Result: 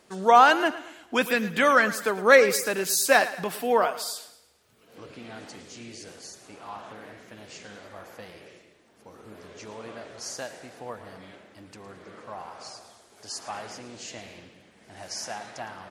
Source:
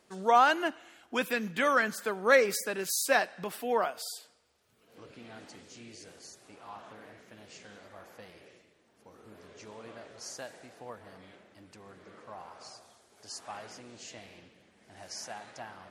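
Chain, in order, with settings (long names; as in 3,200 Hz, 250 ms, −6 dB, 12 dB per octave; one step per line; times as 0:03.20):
repeating echo 111 ms, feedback 42%, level −15 dB
level +6.5 dB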